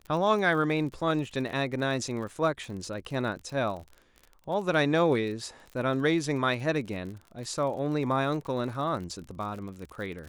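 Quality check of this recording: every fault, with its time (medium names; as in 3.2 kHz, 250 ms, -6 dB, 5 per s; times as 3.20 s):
crackle 45 per s -37 dBFS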